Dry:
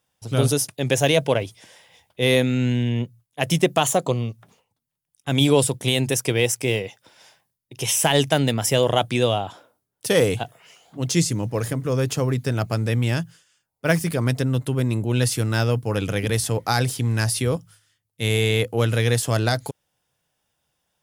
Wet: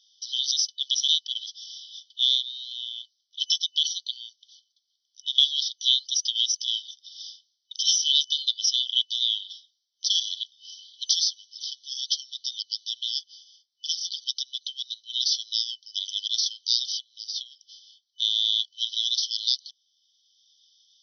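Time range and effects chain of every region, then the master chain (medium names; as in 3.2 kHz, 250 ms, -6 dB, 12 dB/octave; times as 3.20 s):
16.99–18.22 s: compression 12:1, threshold -30 dBFS + distance through air 50 m
whole clip: FFT band-pass 3–6.1 kHz; three bands compressed up and down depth 40%; trim +8 dB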